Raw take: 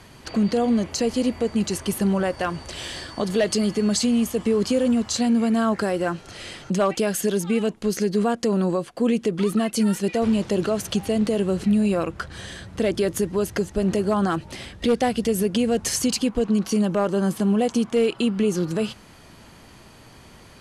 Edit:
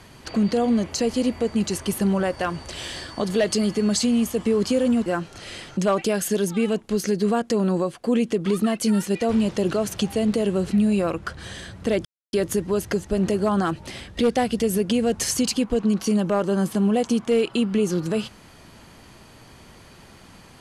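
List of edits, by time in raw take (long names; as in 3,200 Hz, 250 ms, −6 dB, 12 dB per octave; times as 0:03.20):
0:05.06–0:05.99: remove
0:12.98: splice in silence 0.28 s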